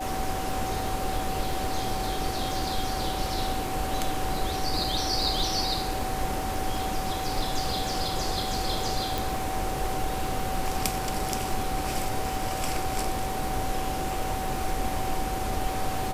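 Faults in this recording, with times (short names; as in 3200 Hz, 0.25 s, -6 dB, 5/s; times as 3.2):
crackle 44/s -35 dBFS
tone 760 Hz -32 dBFS
9.18 pop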